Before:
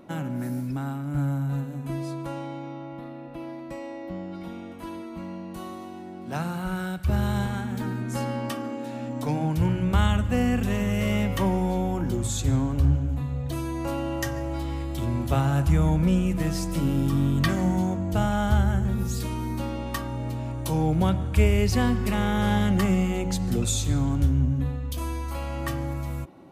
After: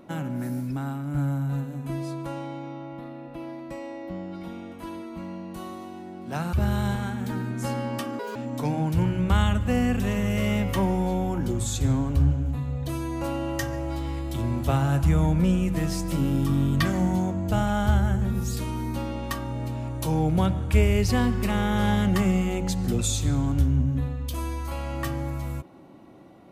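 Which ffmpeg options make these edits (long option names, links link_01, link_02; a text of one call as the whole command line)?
ffmpeg -i in.wav -filter_complex "[0:a]asplit=4[link_01][link_02][link_03][link_04];[link_01]atrim=end=6.532[link_05];[link_02]atrim=start=7.038:end=8.704[link_06];[link_03]atrim=start=8.7:end=8.99,asetpts=PTS-STARTPTS,asetrate=77175,aresample=44100[link_07];[link_04]atrim=start=8.986[link_08];[link_05][link_06]acrossfade=duration=0.004:curve1=hsin:curve2=hsin[link_09];[link_09][link_07]acrossfade=duration=0.004:curve1=hsin:curve2=hsin[link_10];[link_10][link_08]acrossfade=duration=0.004:curve1=hsin:curve2=hsin" out.wav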